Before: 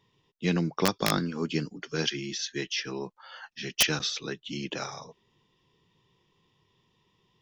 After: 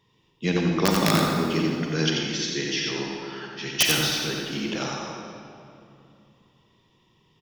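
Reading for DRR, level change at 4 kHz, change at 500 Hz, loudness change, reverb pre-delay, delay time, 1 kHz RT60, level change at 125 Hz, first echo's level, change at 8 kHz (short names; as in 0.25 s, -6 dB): -1.5 dB, +5.0 dB, +5.5 dB, +5.5 dB, 36 ms, 89 ms, 2.4 s, +6.0 dB, -4.5 dB, +5.0 dB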